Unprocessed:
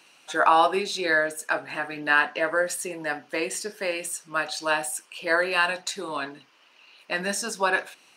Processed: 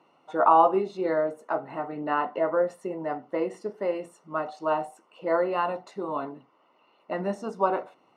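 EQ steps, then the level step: Savitzky-Golay filter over 65 samples; +2.0 dB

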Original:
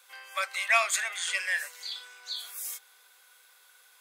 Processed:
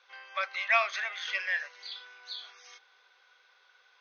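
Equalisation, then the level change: brick-wall FIR low-pass 6.5 kHz; distance through air 150 m; 0.0 dB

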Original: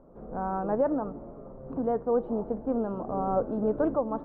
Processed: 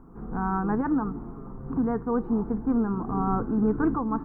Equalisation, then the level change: static phaser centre 1.4 kHz, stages 4; dynamic bell 720 Hz, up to -3 dB, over -46 dBFS, Q 1.3; +9.0 dB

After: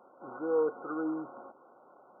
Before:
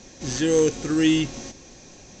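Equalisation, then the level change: high-pass 770 Hz 12 dB/octave; brick-wall FIR low-pass 1.5 kHz; +1.0 dB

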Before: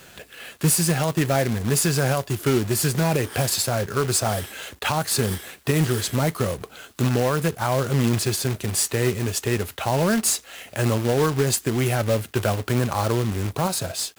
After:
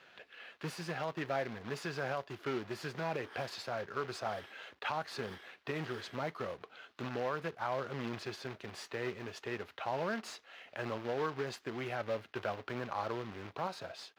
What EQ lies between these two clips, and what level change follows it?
high-pass 930 Hz 6 dB/octave; dynamic bell 3 kHz, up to -3 dB, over -40 dBFS, Q 0.75; distance through air 270 m; -6.5 dB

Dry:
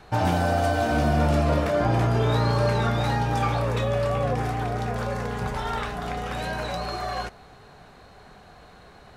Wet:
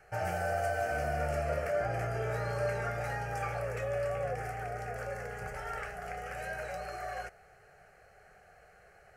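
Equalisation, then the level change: bass shelf 340 Hz -8 dB; static phaser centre 1 kHz, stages 6; -5.0 dB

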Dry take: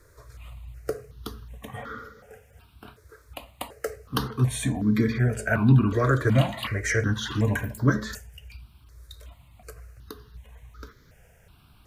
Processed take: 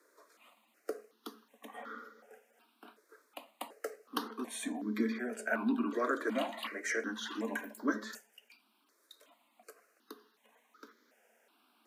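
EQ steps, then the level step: rippled Chebyshev high-pass 220 Hz, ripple 3 dB; -6.5 dB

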